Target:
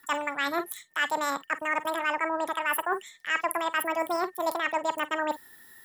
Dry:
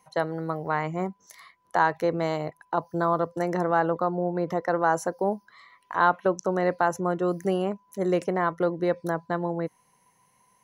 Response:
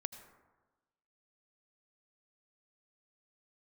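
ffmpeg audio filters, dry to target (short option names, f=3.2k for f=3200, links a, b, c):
-filter_complex "[0:a]equalizer=f=160:t=o:w=0.67:g=-6,equalizer=f=1k:t=o:w=0.67:g=4,equalizer=f=10k:t=o:w=0.67:g=-6[a];[1:a]atrim=start_sample=2205,atrim=end_sample=4410[b];[a][b]afir=irnorm=-1:irlink=0,asetrate=80262,aresample=44100,acrossover=split=650|5200[c][d][e];[e]crystalizer=i=2.5:c=0[f];[c][d][f]amix=inputs=3:normalize=0,lowshelf=f=190:g=6.5,areverse,acompressor=threshold=-34dB:ratio=5,areverse,volume=8.5dB"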